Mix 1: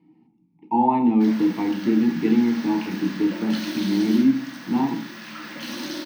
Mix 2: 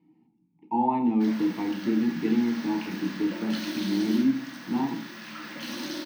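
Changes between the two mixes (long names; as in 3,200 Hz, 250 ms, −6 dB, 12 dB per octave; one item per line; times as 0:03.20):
speech −5.5 dB
background −3.0 dB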